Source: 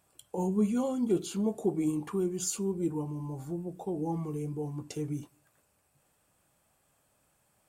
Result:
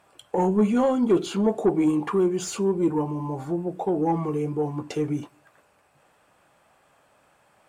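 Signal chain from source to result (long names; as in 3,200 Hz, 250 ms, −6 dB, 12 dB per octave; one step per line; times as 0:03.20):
mid-hump overdrive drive 15 dB, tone 3,100 Hz, clips at −17 dBFS
high-shelf EQ 3,700 Hz −9.5 dB
level +7 dB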